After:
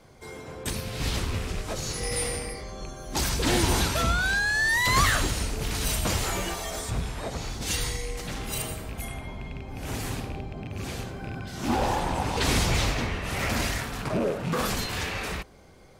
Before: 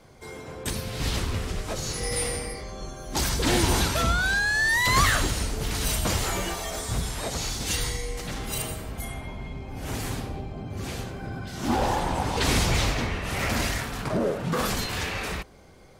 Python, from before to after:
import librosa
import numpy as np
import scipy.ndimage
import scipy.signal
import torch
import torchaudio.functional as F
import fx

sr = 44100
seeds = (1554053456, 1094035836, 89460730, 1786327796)

y = fx.rattle_buzz(x, sr, strikes_db=-30.0, level_db=-30.0)
y = fx.high_shelf(y, sr, hz=fx.line((6.89, 4500.0), (7.61, 2700.0)), db=-11.0, at=(6.89, 7.61), fade=0.02)
y = y * 10.0 ** (-1.0 / 20.0)